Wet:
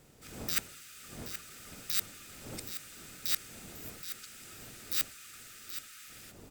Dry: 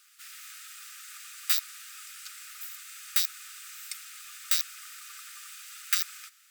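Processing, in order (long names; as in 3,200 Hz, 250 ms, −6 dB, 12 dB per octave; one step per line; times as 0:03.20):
played backwards from end to start
wind on the microphone 440 Hz −50 dBFS
parametric band 120 Hz +4 dB 2.6 octaves
single-tap delay 775 ms −10.5 dB
level −5.5 dB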